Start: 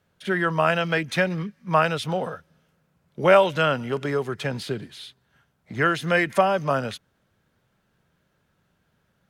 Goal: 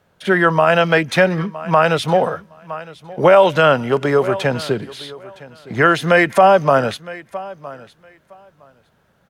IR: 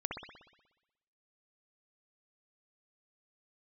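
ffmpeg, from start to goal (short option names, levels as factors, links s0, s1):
-filter_complex "[0:a]equalizer=f=720:w=0.71:g=6,asplit=2[s0][s1];[s1]aecho=0:1:962|1924:0.1|0.016[s2];[s0][s2]amix=inputs=2:normalize=0,alimiter=level_in=2.37:limit=0.891:release=50:level=0:latency=1,volume=0.891"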